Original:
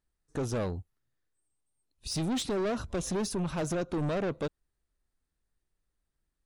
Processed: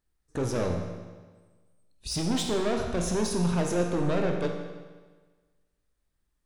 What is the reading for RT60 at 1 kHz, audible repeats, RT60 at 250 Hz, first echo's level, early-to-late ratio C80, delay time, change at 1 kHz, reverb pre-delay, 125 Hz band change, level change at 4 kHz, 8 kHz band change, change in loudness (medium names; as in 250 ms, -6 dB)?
1.4 s, no echo, 1.4 s, no echo, 6.0 dB, no echo, +4.0 dB, 17 ms, +4.0 dB, +4.0 dB, +3.5 dB, +4.0 dB